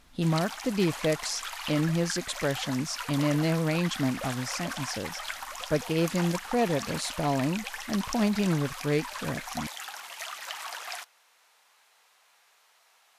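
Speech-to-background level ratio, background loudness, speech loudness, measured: 7.5 dB, −37.0 LKFS, −29.5 LKFS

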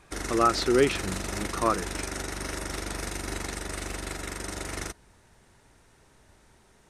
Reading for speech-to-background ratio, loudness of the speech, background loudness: 7.5 dB, −26.5 LKFS, −34.0 LKFS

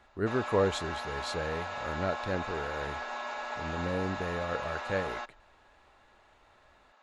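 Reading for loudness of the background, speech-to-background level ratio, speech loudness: −37.5 LKFS, 3.0 dB, −34.5 LKFS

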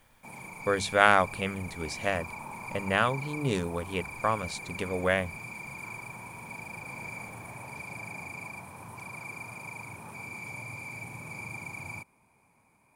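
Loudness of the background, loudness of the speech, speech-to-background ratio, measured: −40.0 LKFS, −29.0 LKFS, 11.0 dB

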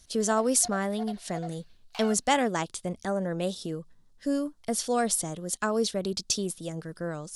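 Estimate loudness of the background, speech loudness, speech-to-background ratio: −44.5 LKFS, −29.0 LKFS, 15.5 dB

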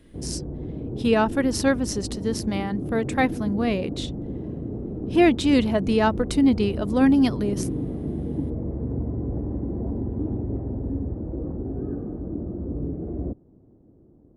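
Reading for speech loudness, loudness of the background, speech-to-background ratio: −23.0 LKFS, −31.0 LKFS, 8.0 dB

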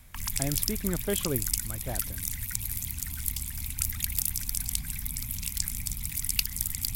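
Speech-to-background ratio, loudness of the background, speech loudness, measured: −4.5 dB, −30.5 LKFS, −35.0 LKFS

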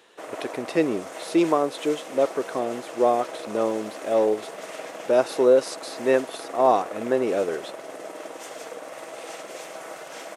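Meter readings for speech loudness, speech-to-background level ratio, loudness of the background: −24.0 LKFS, 13.0 dB, −37.0 LKFS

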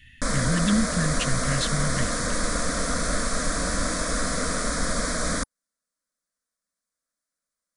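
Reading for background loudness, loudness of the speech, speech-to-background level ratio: −26.5 LKFS, −27.5 LKFS, −1.0 dB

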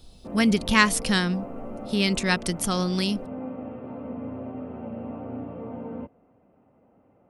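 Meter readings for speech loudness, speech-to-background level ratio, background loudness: −24.0 LKFS, 13.0 dB, −37.0 LKFS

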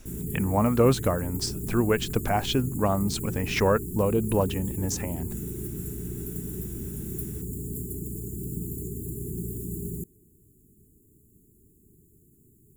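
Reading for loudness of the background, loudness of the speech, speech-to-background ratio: −34.5 LKFS, −26.5 LKFS, 8.0 dB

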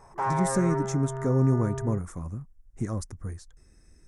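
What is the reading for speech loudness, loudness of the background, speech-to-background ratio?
−28.5 LKFS, −32.0 LKFS, 3.5 dB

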